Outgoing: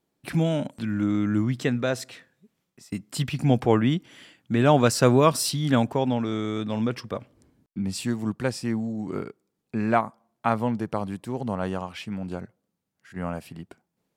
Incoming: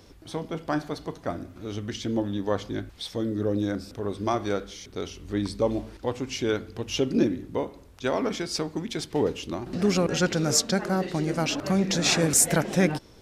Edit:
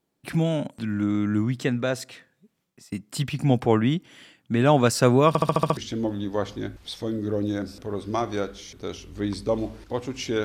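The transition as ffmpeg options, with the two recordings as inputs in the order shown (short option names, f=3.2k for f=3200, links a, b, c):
-filter_complex "[0:a]apad=whole_dur=10.44,atrim=end=10.44,asplit=7[a][b][c][d][e][f][g];[a]atrim=end=5.352[h];[b]atrim=start=5.278:end=5.352[i];[c]atrim=start=5.278:end=5.352[j];[d]atrim=start=5.278:end=5.352[k];[e]atrim=start=5.278:end=5.352[l];[f]atrim=start=5.278:end=5.352[m];[g]atrim=start=5.278:end=5.352[n];[1:a]atrim=start=1.898:end=6.57[o];[h][i]acrossfade=d=0.004:c1=hsin:c2=hsin[p];[p][j]acrossfade=d=0.004:c1=hsin:c2=hsin[q];[q][k]acrossfade=d=0.004:c1=hsin:c2=hsin[r];[r][l]acrossfade=d=0.004:c1=hsin:c2=hsin[s];[s][m]acrossfade=d=0.004:c1=hsin:c2=hsin[t];[t][n]acrossfade=d=0.004:c1=hsin:c2=hsin[u];[u][o]acrossfade=d=0.004:c1=hsin:c2=hsin"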